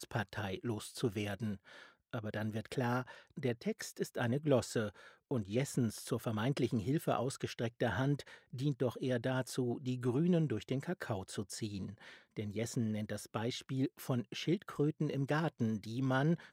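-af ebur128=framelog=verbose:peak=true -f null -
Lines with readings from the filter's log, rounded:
Integrated loudness:
  I:         -37.3 LUFS
  Threshold: -47.5 LUFS
Loudness range:
  LRA:         3.9 LU
  Threshold: -57.5 LUFS
  LRA low:   -40.0 LUFS
  LRA high:  -36.2 LUFS
True peak:
  Peak:      -17.4 dBFS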